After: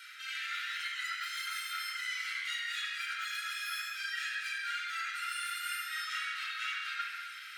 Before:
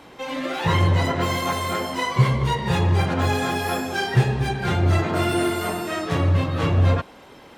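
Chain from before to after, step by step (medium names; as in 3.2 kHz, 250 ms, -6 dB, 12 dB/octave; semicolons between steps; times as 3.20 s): Chebyshev high-pass 1.3 kHz, order 8; reverse; compression 12:1, threshold -40 dBFS, peak gain reduction 17.5 dB; reverse; reverberation RT60 2.1 s, pre-delay 27 ms, DRR -2 dB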